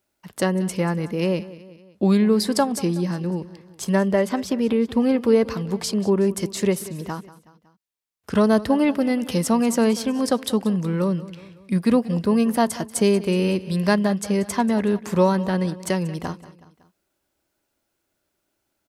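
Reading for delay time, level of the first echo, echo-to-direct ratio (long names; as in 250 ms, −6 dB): 186 ms, −17.5 dB, −16.0 dB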